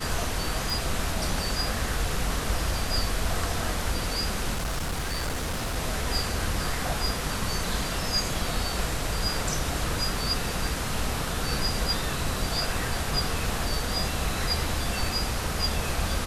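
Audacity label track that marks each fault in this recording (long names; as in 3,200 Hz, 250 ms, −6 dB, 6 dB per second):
0.700000	0.700000	click
4.550000	5.770000	clipping −25.5 dBFS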